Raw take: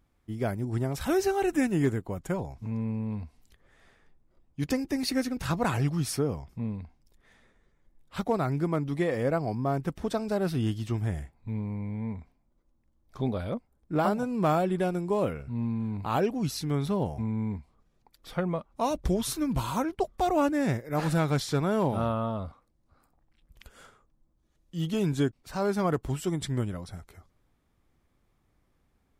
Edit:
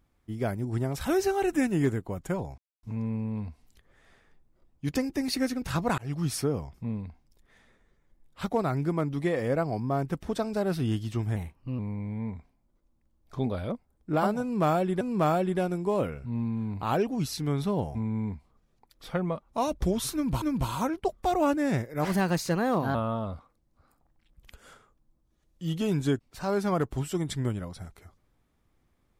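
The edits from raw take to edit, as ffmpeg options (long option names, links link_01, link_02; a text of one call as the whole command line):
ffmpeg -i in.wav -filter_complex "[0:a]asplit=9[link_01][link_02][link_03][link_04][link_05][link_06][link_07][link_08][link_09];[link_01]atrim=end=2.58,asetpts=PTS-STARTPTS,afade=type=out:start_time=2.576:duration=0.004:curve=hsin,apad=pad_dur=0.25[link_10];[link_02]atrim=start=2.58:end=5.73,asetpts=PTS-STARTPTS,afade=type=in:duration=0.004:curve=hsin,afade=type=out:start_time=3.146:duration=0.004:curve=hsin[link_11];[link_03]atrim=start=5.73:end=11.114,asetpts=PTS-STARTPTS,afade=type=in:duration=0.25[link_12];[link_04]atrim=start=11.11:end=11.61,asetpts=PTS-STARTPTS,asetrate=51597,aresample=44100,atrim=end_sample=18846,asetpts=PTS-STARTPTS[link_13];[link_05]atrim=start=11.606:end=14.832[link_14];[link_06]atrim=start=14.238:end=19.652[link_15];[link_07]atrim=start=19.368:end=21.004[link_16];[link_08]atrim=start=21:end=22.07,asetpts=PTS-STARTPTS,asetrate=52479,aresample=44100[link_17];[link_09]atrim=start=22.066[link_18];[link_10][link_11][link_12]concat=n=3:v=0:a=1[link_19];[link_19][link_13]acrossfade=duration=0.004:curve1=hsin:curve2=hsin[link_20];[link_20][link_14]acrossfade=duration=0.004:curve1=hsin:curve2=hsin[link_21];[link_21][link_15]acrossfade=duration=0.004:curve1=hsin:curve2=hsin[link_22];[link_22][link_16]acrossfade=duration=0.004:curve1=hsin:curve2=hsin[link_23];[link_23][link_17]acrossfade=duration=0.004:curve1=hsin:curve2=hsin[link_24];[link_24][link_18]acrossfade=duration=0.004:curve1=hsin:curve2=hsin" out.wav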